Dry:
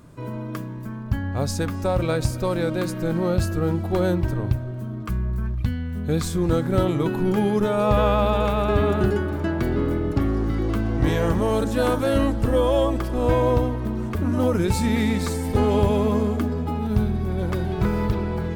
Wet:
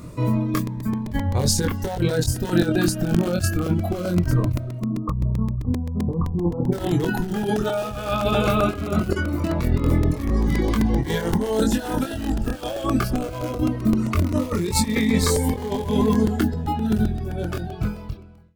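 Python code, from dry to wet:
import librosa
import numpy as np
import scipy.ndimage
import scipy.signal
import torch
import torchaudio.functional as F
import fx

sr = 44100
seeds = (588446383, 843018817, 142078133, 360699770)

p1 = fx.fade_out_tail(x, sr, length_s=2.73)
p2 = fx.dereverb_blind(p1, sr, rt60_s=1.7)
p3 = (np.mod(10.0 ** (16.5 / 20.0) * p2 + 1.0, 2.0) - 1.0) / 10.0 ** (16.5 / 20.0)
p4 = p2 + F.gain(torch.from_numpy(p3), -11.0).numpy()
p5 = fx.over_compress(p4, sr, threshold_db=-25.0, ratio=-0.5)
p6 = fx.steep_lowpass(p5, sr, hz=1200.0, slope=96, at=(4.78, 6.71), fade=0.02)
p7 = fx.doubler(p6, sr, ms=23.0, db=-4.0)
p8 = fx.buffer_crackle(p7, sr, first_s=0.54, period_s=0.13, block=128, kind='repeat')
p9 = fx.notch_cascade(p8, sr, direction='falling', hz=0.21)
y = F.gain(torch.from_numpy(p9), 4.5).numpy()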